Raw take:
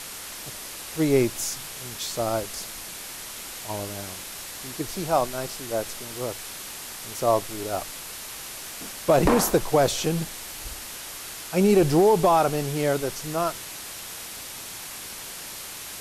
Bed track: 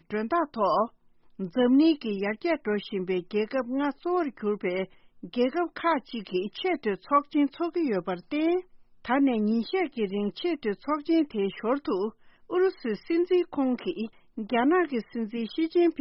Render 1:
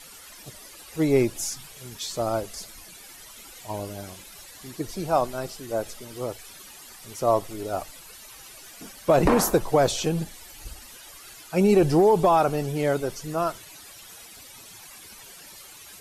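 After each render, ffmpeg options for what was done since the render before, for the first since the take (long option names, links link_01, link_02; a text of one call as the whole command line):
ffmpeg -i in.wav -af "afftdn=noise_reduction=13:noise_floor=-38" out.wav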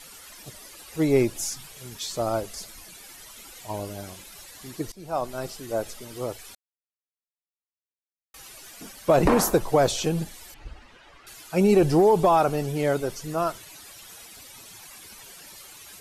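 ffmpeg -i in.wav -filter_complex "[0:a]asettb=1/sr,asplit=3[link_01][link_02][link_03];[link_01]atrim=end=10.544[link_04];[link_02]atrim=start=10.54:end=11.27,asetpts=PTS-STARTPTS,afade=type=in:duration=0.004:curve=qsin,afade=type=out:start_time=0.726:duration=0.004:curve=qsin,lowpass=2400[link_05];[link_03]atrim=start=11.266[link_06];[link_04][link_05]acrossfade=duration=0.004:curve1=hsin:curve2=qsin[link_07];[link_07][link_06]acrossfade=duration=0.004:curve1=qsin:curve2=hsin,asplit=4[link_08][link_09][link_10][link_11];[link_08]atrim=end=4.92,asetpts=PTS-STARTPTS,afade=type=out:start_time=4.916:duration=0.004:curve=hsin:silence=0.112202[link_12];[link_09]atrim=start=4.92:end=6.55,asetpts=PTS-STARTPTS,afade=type=in:duration=0.54:silence=0.112202,afade=type=out:start_time=1.626:duration=0.004:curve=hsin[link_13];[link_10]atrim=start=6.55:end=8.34,asetpts=PTS-STARTPTS,volume=0[link_14];[link_11]atrim=start=8.34,asetpts=PTS-STARTPTS,afade=type=in:duration=0.004:curve=hsin[link_15];[link_12][link_13][link_14][link_15]concat=n=4:v=0:a=1" out.wav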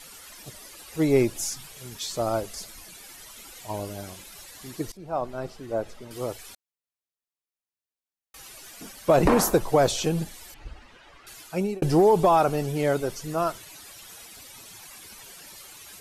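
ffmpeg -i in.wav -filter_complex "[0:a]asettb=1/sr,asplit=3[link_01][link_02][link_03];[link_01]atrim=end=4.974[link_04];[link_02]atrim=start=4.97:end=6.11,asetpts=PTS-STARTPTS,afade=type=in:duration=0.004:curve=qsin,afade=type=out:start_time=1.136:duration=0.004:curve=qsin,lowpass=frequency=1700:poles=1[link_05];[link_03]atrim=start=6.106[link_06];[link_04][link_05]acrossfade=duration=0.004:curve1=hsin:curve2=qsin[link_07];[link_07][link_06]acrossfade=duration=0.004:curve1=qsin:curve2=hsin,asplit=2[link_08][link_09];[link_08]atrim=end=11.82,asetpts=PTS-STARTPTS,afade=type=out:start_time=11.41:duration=0.41[link_10];[link_09]atrim=start=11.82,asetpts=PTS-STARTPTS,afade=type=in:duration=0.004:curve=hsin[link_11];[link_10][link_11]concat=n=2:v=0:a=1" out.wav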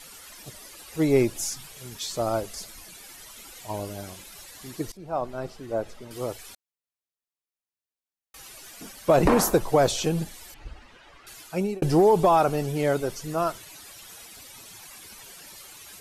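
ffmpeg -i in.wav -af anull out.wav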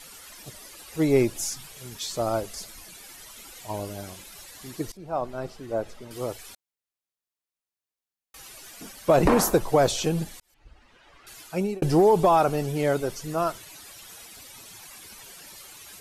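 ffmpeg -i in.wav -filter_complex "[0:a]asplit=2[link_01][link_02];[link_01]atrim=end=10.4,asetpts=PTS-STARTPTS,afade=type=out:start_time=10.396:duration=0.004:curve=hsin[link_03];[link_02]atrim=start=10.4,asetpts=PTS-STARTPTS,afade=type=in:duration=1[link_04];[link_03][link_04]concat=n=2:v=0:a=1" out.wav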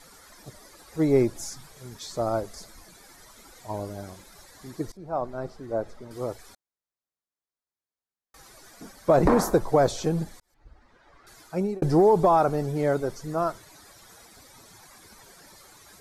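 ffmpeg -i in.wav -af "lowpass=frequency=3700:poles=1,equalizer=frequency=2800:width_type=o:width=0.53:gain=-12.5" out.wav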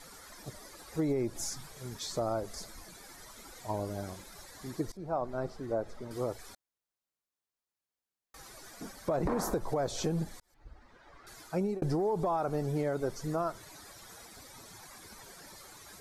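ffmpeg -i in.wav -af "alimiter=limit=-18dB:level=0:latency=1:release=150,acompressor=threshold=-31dB:ratio=2" out.wav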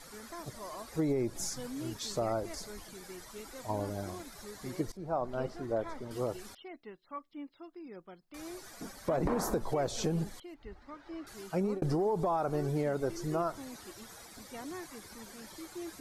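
ffmpeg -i in.wav -i bed.wav -filter_complex "[1:a]volume=-20.5dB[link_01];[0:a][link_01]amix=inputs=2:normalize=0" out.wav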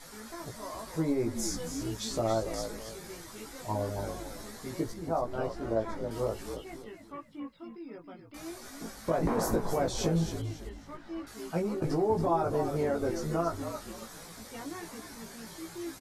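ffmpeg -i in.wav -filter_complex "[0:a]asplit=2[link_01][link_02];[link_02]adelay=18,volume=-2dB[link_03];[link_01][link_03]amix=inputs=2:normalize=0,asplit=2[link_04][link_05];[link_05]asplit=4[link_06][link_07][link_08][link_09];[link_06]adelay=276,afreqshift=-56,volume=-8.5dB[link_10];[link_07]adelay=552,afreqshift=-112,volume=-17.4dB[link_11];[link_08]adelay=828,afreqshift=-168,volume=-26.2dB[link_12];[link_09]adelay=1104,afreqshift=-224,volume=-35.1dB[link_13];[link_10][link_11][link_12][link_13]amix=inputs=4:normalize=0[link_14];[link_04][link_14]amix=inputs=2:normalize=0" out.wav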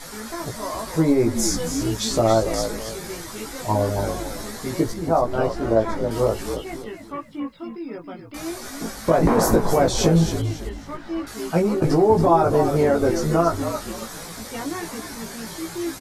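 ffmpeg -i in.wav -af "volume=11.5dB" out.wav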